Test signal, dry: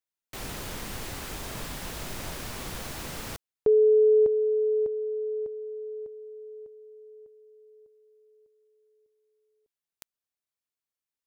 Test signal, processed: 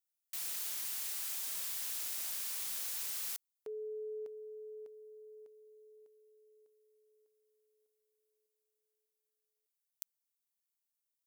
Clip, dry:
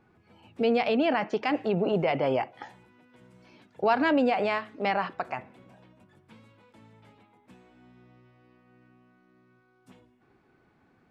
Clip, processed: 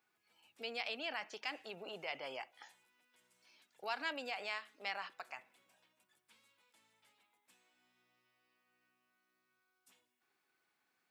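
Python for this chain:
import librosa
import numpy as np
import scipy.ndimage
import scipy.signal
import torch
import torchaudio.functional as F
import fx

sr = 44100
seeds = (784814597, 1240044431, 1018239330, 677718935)

y = np.diff(x, prepend=0.0)
y = F.gain(torch.from_numpy(y), 1.0).numpy()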